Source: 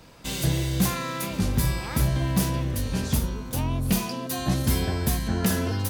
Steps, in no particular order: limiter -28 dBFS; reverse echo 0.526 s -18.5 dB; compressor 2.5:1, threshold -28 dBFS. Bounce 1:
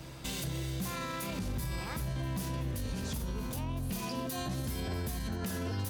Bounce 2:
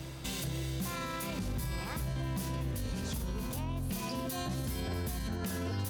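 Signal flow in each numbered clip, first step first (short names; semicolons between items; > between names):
compressor > reverse echo > limiter; reverse echo > compressor > limiter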